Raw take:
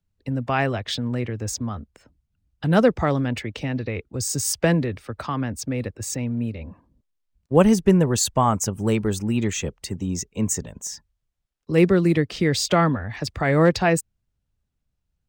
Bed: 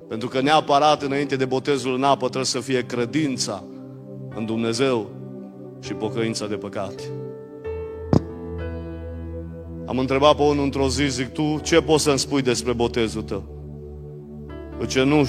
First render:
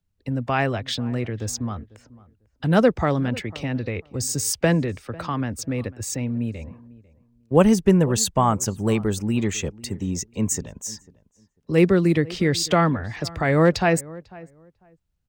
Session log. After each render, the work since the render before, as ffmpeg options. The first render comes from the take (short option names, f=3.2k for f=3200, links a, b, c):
-filter_complex "[0:a]asplit=2[a][b];[b]adelay=497,lowpass=f=1.6k:p=1,volume=-20.5dB,asplit=2[c][d];[d]adelay=497,lowpass=f=1.6k:p=1,volume=0.19[e];[a][c][e]amix=inputs=3:normalize=0"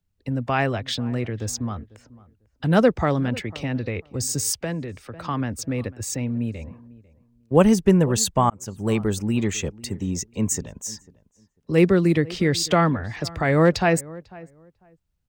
-filter_complex "[0:a]asplit=3[a][b][c];[a]afade=t=out:st=4.56:d=0.02[d];[b]acompressor=threshold=-40dB:ratio=1.5:attack=3.2:release=140:knee=1:detection=peak,afade=t=in:st=4.56:d=0.02,afade=t=out:st=5.24:d=0.02[e];[c]afade=t=in:st=5.24:d=0.02[f];[d][e][f]amix=inputs=3:normalize=0,asplit=2[g][h];[g]atrim=end=8.5,asetpts=PTS-STARTPTS,afade=t=out:st=8.496:d=0.004:c=hsin[i];[h]atrim=start=8.5,asetpts=PTS-STARTPTS,afade=t=in:d=0.47[j];[i][j]concat=n=2:v=0:a=1"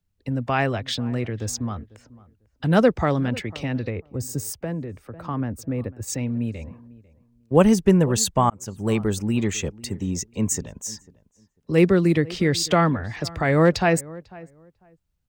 -filter_complex "[0:a]asplit=3[a][b][c];[a]afade=t=out:st=3.89:d=0.02[d];[b]equalizer=f=4.4k:t=o:w=2.7:g=-12,afade=t=in:st=3.89:d=0.02,afade=t=out:st=6.07:d=0.02[e];[c]afade=t=in:st=6.07:d=0.02[f];[d][e][f]amix=inputs=3:normalize=0"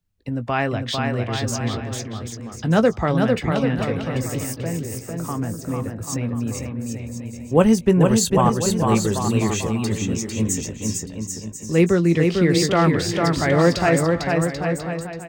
-filter_complex "[0:a]asplit=2[a][b];[b]adelay=18,volume=-12dB[c];[a][c]amix=inputs=2:normalize=0,asplit=2[d][e];[e]aecho=0:1:450|787.5|1041|1230|1373:0.631|0.398|0.251|0.158|0.1[f];[d][f]amix=inputs=2:normalize=0"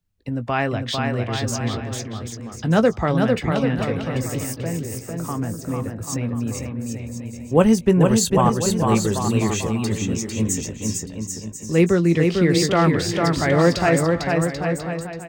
-af anull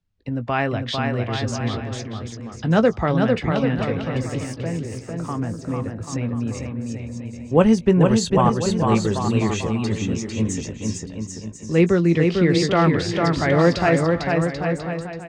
-af "lowpass=5.2k"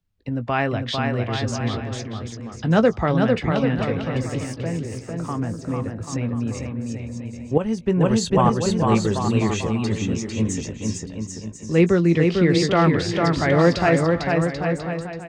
-filter_complex "[0:a]asplit=2[a][b];[a]atrim=end=7.58,asetpts=PTS-STARTPTS,afade=t=out:st=7.576:d=0.004:c=hsin:silence=0.211349[c];[b]atrim=start=7.58,asetpts=PTS-STARTPTS,afade=t=in:d=0.99:c=qsin:silence=0.211349[d];[c][d]concat=n=2:v=0:a=1"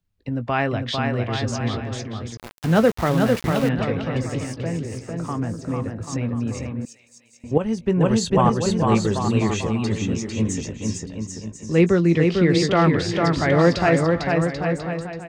-filter_complex "[0:a]asettb=1/sr,asplit=3[a][b][c];[a]atrim=end=2.374[d];[b]atrim=start=2.37:end=3.69,asetpts=PTS-STARTPTS,afade=t=in:d=0.004:c=qsin,afade=t=out:st=1.316:d=0.004:c=qsin,aeval=exprs='val(0)*gte(abs(val(0)),0.0447)':c=same[e];[c]atrim=start=3.686[f];[d][e]acrossfade=d=0.004:c1=hsin:c2=qsin[g];[g][f]acrossfade=d=0.004:c1=qsin:c2=hsin,asettb=1/sr,asplit=3[h][i][j];[h]atrim=end=6.854[k];[i]atrim=start=6.85:end=7.44,asetpts=PTS-STARTPTS,afade=t=in:d=0.004:c=qsin,afade=t=out:st=0.586:d=0.004:c=qsin,aderivative[l];[j]atrim=start=7.436[m];[k][l]acrossfade=d=0.004:c1=hsin:c2=qsin[n];[n][m]acrossfade=d=0.004:c1=qsin:c2=hsin"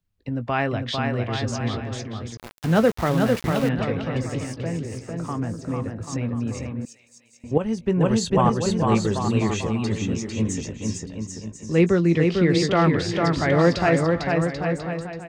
-af "volume=-1.5dB"